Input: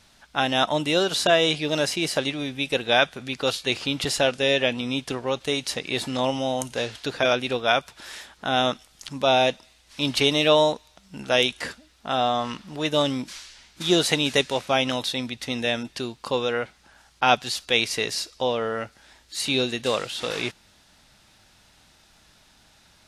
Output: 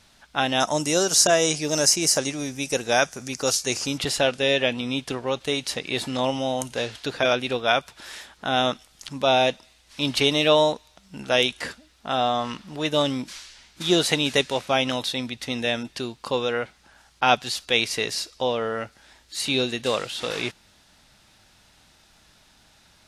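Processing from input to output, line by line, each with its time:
0.6–3.98 resonant high shelf 4600 Hz +9 dB, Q 3

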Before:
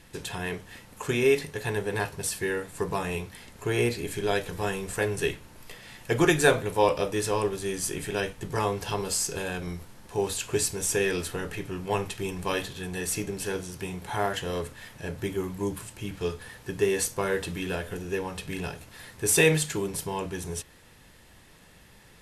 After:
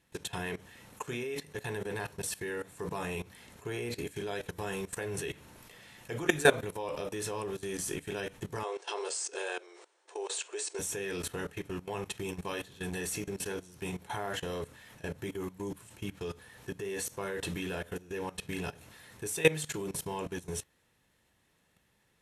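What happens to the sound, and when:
8.63–10.79 brick-wall FIR band-pass 320–9600 Hz
whole clip: HPF 76 Hz 6 dB/oct; notch 4800 Hz, Q 14; level quantiser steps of 18 dB

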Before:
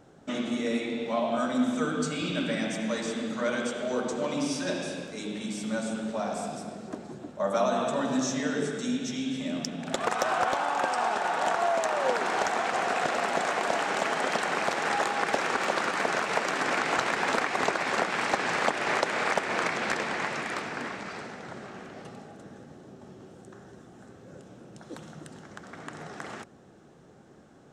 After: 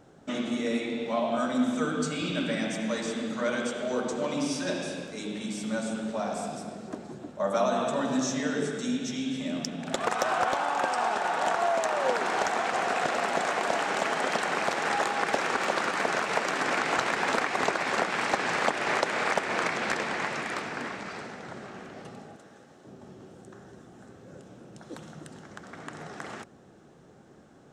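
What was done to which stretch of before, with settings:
22.36–22.85 low shelf 370 Hz -12 dB

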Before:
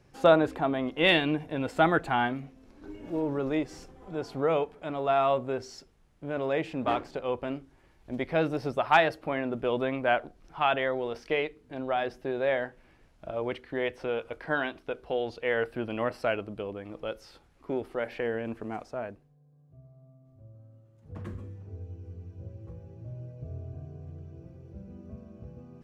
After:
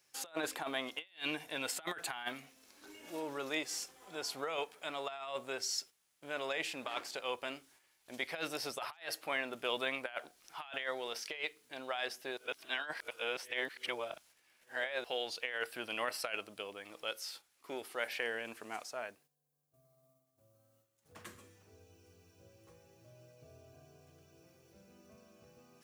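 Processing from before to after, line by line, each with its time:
12.37–15.04 reverse
whole clip: gate -56 dBFS, range -8 dB; differentiator; negative-ratio compressor -47 dBFS, ratio -0.5; gain +9.5 dB

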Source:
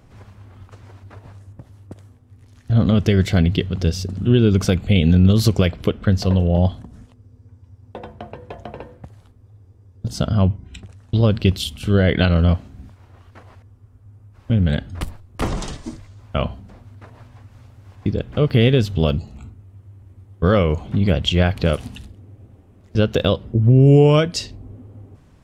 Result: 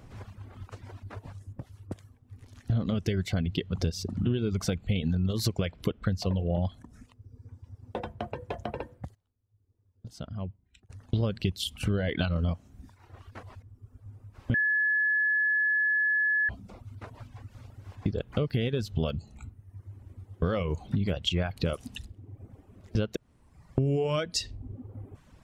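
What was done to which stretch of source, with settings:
8.76–11.29 dip -18.5 dB, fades 0.39 s logarithmic
14.54–16.49 bleep 1710 Hz -11 dBFS
23.16–23.78 room tone
whole clip: reverb removal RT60 0.86 s; compressor 6:1, threshold -25 dBFS

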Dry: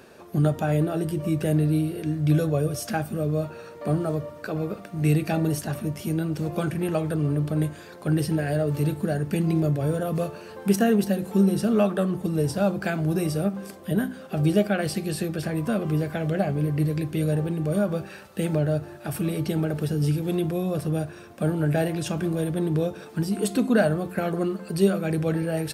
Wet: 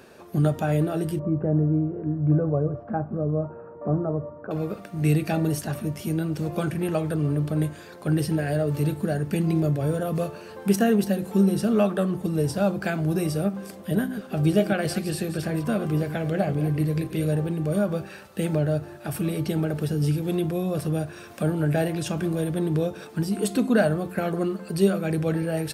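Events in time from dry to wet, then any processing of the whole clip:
1.19–4.51 LPF 1200 Hz 24 dB/oct
13.56–17.28 reverse delay 0.13 s, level -10.5 dB
20.77–23.07 mismatched tape noise reduction encoder only

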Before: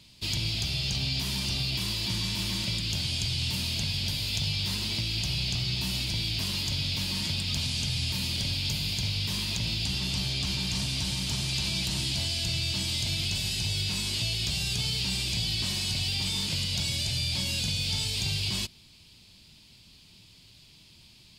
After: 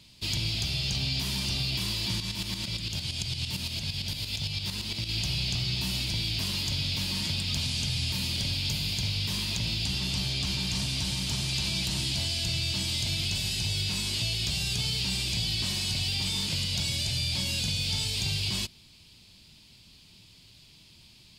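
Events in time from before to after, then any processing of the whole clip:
2.2–5.09 tremolo saw up 8.8 Hz, depth 65%

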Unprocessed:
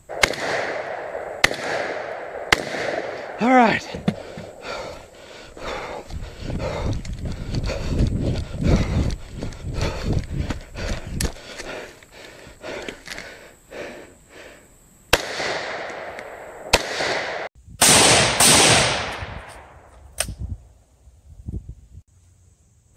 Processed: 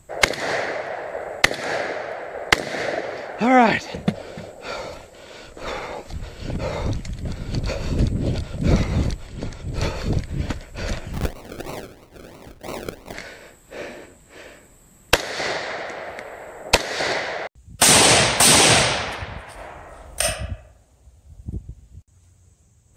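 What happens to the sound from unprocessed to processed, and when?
9.27–9.67 bell 12000 Hz -7.5 dB 0.58 oct
11.13–13.14 decimation with a swept rate 37×, swing 60% 3 Hz
19.54–20.21 reverb throw, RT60 0.82 s, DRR -5.5 dB

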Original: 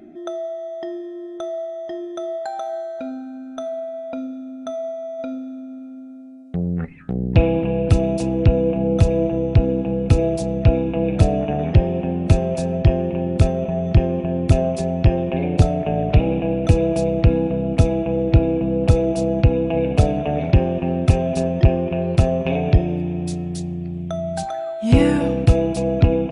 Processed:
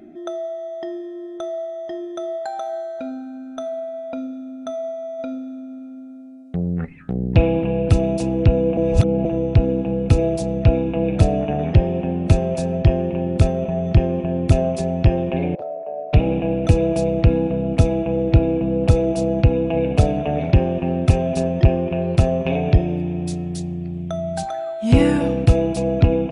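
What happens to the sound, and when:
8.77–9.25 reverse
15.55–16.13 ladder band-pass 650 Hz, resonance 60%

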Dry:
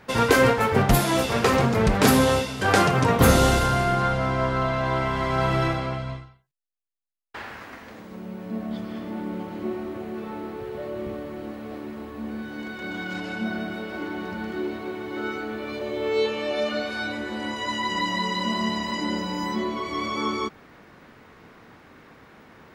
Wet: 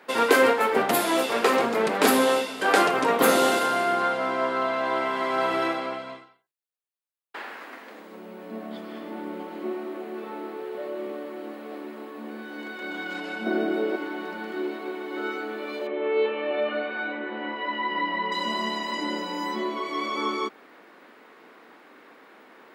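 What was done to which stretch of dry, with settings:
13.46–13.96 bell 370 Hz +13 dB 1.4 oct
15.87–18.32 LPF 2800 Hz 24 dB/oct
whole clip: HPF 270 Hz 24 dB/oct; bell 5900 Hz -5.5 dB 0.55 oct

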